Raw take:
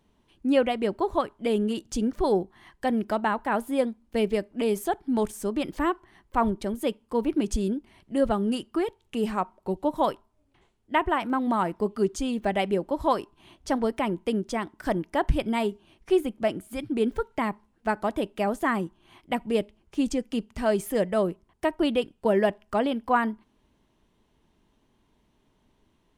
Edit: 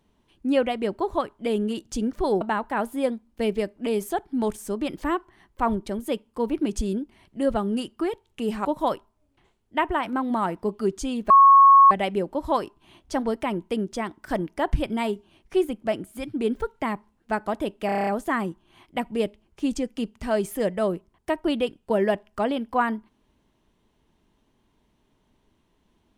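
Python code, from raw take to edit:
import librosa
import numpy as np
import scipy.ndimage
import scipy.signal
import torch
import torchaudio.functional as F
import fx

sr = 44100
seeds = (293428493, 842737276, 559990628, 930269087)

y = fx.edit(x, sr, fx.cut(start_s=2.41, length_s=0.75),
    fx.cut(start_s=9.4, length_s=0.42),
    fx.insert_tone(at_s=12.47, length_s=0.61, hz=1100.0, db=-9.0),
    fx.stutter(start_s=18.42, slice_s=0.03, count=8), tone=tone)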